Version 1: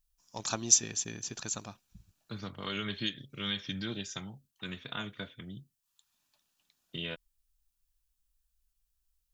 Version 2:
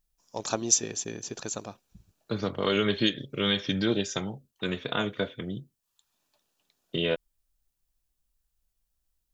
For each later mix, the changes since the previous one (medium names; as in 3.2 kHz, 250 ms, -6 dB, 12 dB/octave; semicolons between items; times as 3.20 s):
second voice +6.5 dB; master: add peaking EQ 470 Hz +11 dB 1.5 oct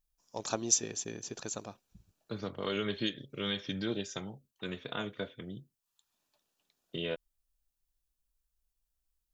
first voice -4.5 dB; second voice -8.5 dB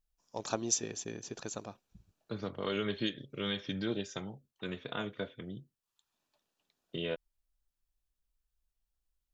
master: add treble shelf 5.5 kHz -7 dB